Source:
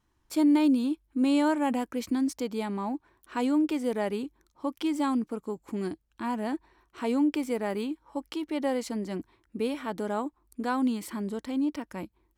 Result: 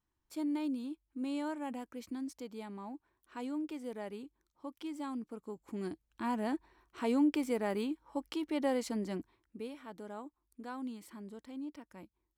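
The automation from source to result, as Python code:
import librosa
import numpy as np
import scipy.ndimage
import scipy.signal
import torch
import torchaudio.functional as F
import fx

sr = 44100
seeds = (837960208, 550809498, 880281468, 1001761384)

y = fx.gain(x, sr, db=fx.line((5.09, -13.0), (6.26, -3.5), (9.09, -3.5), (9.72, -14.5)))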